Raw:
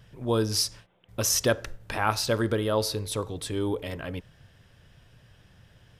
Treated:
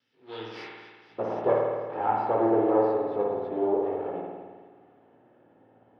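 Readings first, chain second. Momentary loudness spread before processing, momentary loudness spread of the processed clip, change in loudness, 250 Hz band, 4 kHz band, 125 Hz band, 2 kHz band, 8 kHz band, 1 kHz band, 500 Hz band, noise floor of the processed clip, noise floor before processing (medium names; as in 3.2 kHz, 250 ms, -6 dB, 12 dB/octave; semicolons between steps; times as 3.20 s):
11 LU, 18 LU, +1.0 dB, +1.0 dB, under -15 dB, -12.0 dB, -9.5 dB, under -40 dB, +5.0 dB, +4.0 dB, -60 dBFS, -59 dBFS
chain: comb filter that takes the minimum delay 2.3 ms; high-pass 95 Hz; peaking EQ 240 Hz +12 dB 1.9 oct; band-pass sweep 5.7 kHz -> 710 Hz, 0.10–1.19 s; chorus 1.7 Hz, delay 16.5 ms, depth 3.1 ms; distance through air 320 m; on a send: feedback echo behind a high-pass 241 ms, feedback 66%, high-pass 2.2 kHz, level -15 dB; on the sum: spring tank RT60 1.5 s, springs 53 ms, chirp 65 ms, DRR -1.5 dB; trim +7 dB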